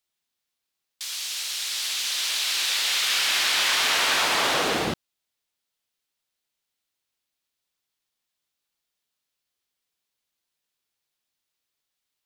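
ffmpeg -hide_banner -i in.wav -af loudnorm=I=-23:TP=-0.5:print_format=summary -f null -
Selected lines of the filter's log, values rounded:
Input Integrated:    -22.1 LUFS
Input True Peak:     -10.5 dBTP
Input LRA:             5.1 LU
Input Threshold:     -32.4 LUFS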